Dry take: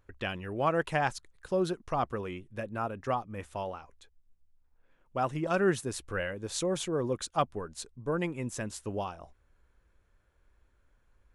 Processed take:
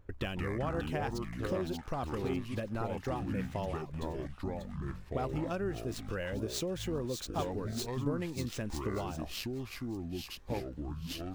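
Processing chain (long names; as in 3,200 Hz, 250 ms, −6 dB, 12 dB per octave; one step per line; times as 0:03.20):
running median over 5 samples
parametric band 1,300 Hz −6.5 dB 2.3 octaves
downward compressor 6 to 1, threshold −43 dBFS, peak gain reduction 18.5 dB
delay with a high-pass on its return 591 ms, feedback 35%, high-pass 2,700 Hz, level −5.5 dB
delay with pitch and tempo change per echo 93 ms, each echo −6 semitones, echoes 2
one half of a high-frequency compander decoder only
level +9 dB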